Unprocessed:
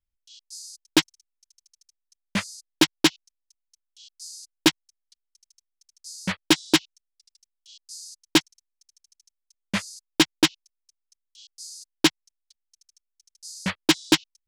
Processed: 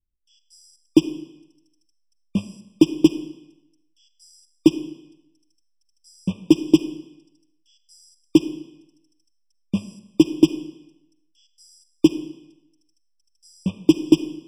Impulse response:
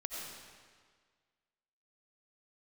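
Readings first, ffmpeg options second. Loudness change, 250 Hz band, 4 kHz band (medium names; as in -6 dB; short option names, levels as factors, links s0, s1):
+2.0 dB, +7.5 dB, -10.5 dB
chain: -filter_complex "[0:a]lowshelf=f=530:t=q:w=1.5:g=13,asplit=2[s0][s1];[1:a]atrim=start_sample=2205,asetrate=83790,aresample=44100[s2];[s1][s2]afir=irnorm=-1:irlink=0,volume=0.75[s3];[s0][s3]amix=inputs=2:normalize=0,afftfilt=real='re*eq(mod(floor(b*sr/1024/1200),2),0)':imag='im*eq(mod(floor(b*sr/1024/1200),2),0)':win_size=1024:overlap=0.75,volume=0.299"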